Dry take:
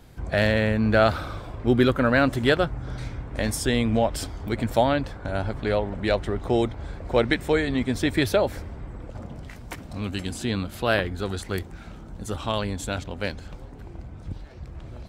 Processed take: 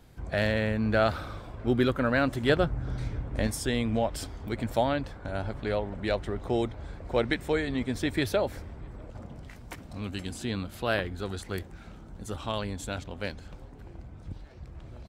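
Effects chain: 2.49–3.47 s: bass shelf 480 Hz +6 dB; echo from a far wall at 110 m, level -29 dB; trim -5.5 dB

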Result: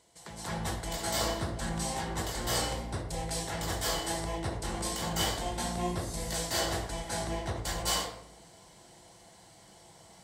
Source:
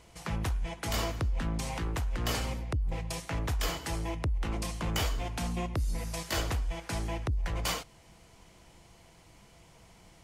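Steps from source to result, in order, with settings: graphic EQ with 31 bands 1.25 kHz -8 dB, 2.5 kHz -10 dB, 4 kHz +4 dB, 8 kHz +8 dB; hard clipper -17.5 dBFS, distortion -52 dB; high-pass 300 Hz 6 dB/octave; reverberation RT60 0.75 s, pre-delay 201 ms, DRR -10.5 dB; trim -6 dB

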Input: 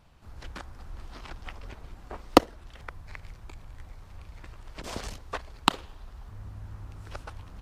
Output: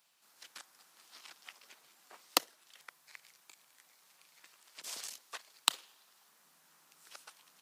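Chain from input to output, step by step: elliptic high-pass 150 Hz; differentiator; trim +4 dB

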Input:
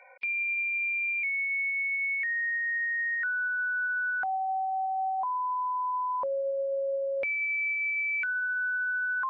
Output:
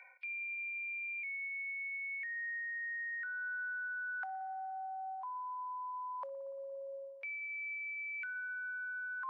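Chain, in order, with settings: high-pass 1.3 kHz 12 dB/octave; reverse; compression 12:1, threshold -41 dBFS, peak gain reduction 12.5 dB; reverse; spring tank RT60 2.9 s, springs 57 ms, chirp 30 ms, DRR 16.5 dB; trim +1 dB

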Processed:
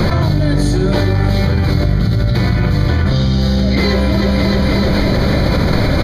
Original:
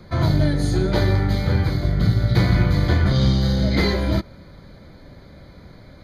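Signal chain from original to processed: feedback delay 308 ms, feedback 52%, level -14 dB; level flattener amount 100%

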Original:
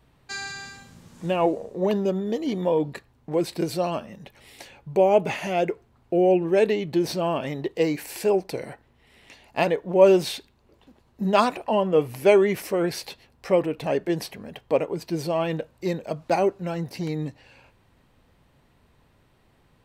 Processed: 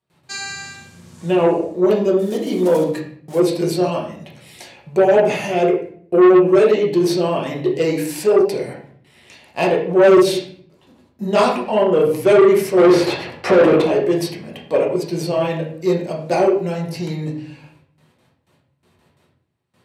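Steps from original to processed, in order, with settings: 2.19–3.41 s: block-companded coder 5-bit; gate with hold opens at -50 dBFS; treble shelf 5.5 kHz +11.5 dB; 12.77–13.82 s: overdrive pedal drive 34 dB, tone 1 kHz, clips at -7.5 dBFS; reverberation RT60 0.55 s, pre-delay 5 ms, DRR -2 dB; dynamic bell 400 Hz, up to +7 dB, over -26 dBFS, Q 1.9; low-pass 11 kHz 12 dB/octave; saturation -6.5 dBFS, distortion -9 dB; high-pass 89 Hz 24 dB/octave

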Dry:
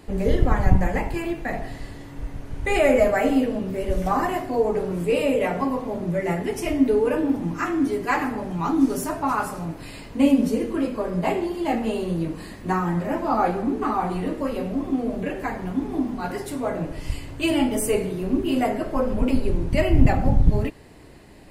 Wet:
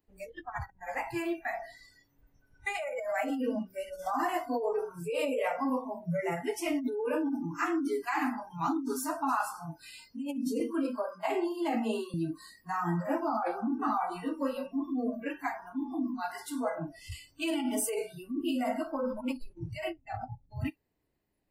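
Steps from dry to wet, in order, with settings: compressor with a negative ratio -23 dBFS, ratio -1; spectral noise reduction 29 dB; 10.60–12.14 s: steep high-pass 210 Hz 96 dB/octave; trim -6.5 dB

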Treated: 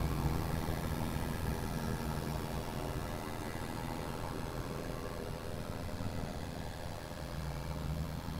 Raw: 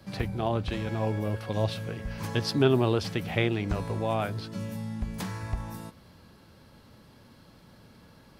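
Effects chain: echo that smears into a reverb 575 ms, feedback 49%, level -7 dB; Paulstretch 17×, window 0.10 s, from 6.25 s; ring modulator 41 Hz; trim +8 dB

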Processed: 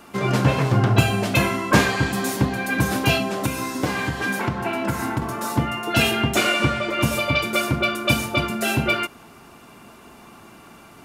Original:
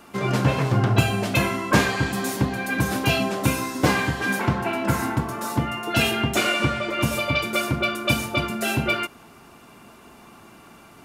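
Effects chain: 3.16–5.22 s: compression, threshold -22 dBFS, peak gain reduction 8.5 dB; trim +2 dB

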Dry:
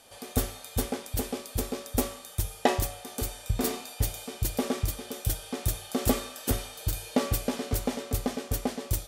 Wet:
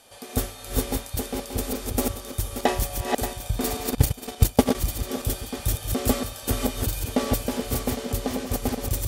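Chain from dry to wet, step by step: backward echo that repeats 290 ms, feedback 43%, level -3 dB; 3.87–4.75 s: transient shaper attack +11 dB, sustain -11 dB; trim +1.5 dB

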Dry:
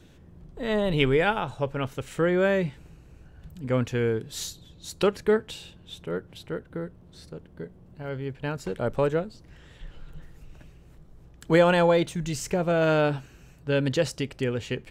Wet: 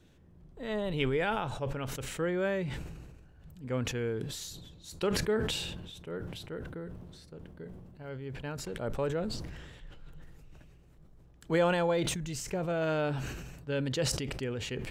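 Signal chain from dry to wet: decay stretcher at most 35 dB/s; trim -8.5 dB

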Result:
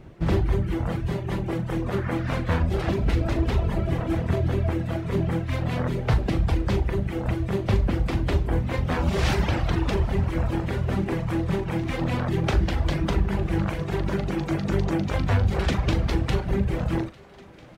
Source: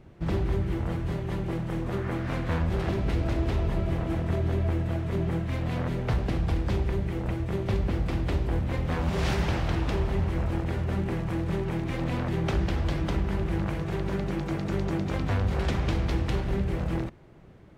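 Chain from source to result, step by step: reverb removal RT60 1.2 s; doubling 40 ms -11 dB; thinning echo 850 ms, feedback 83%, high-pass 170 Hz, level -23 dB; trim +6 dB

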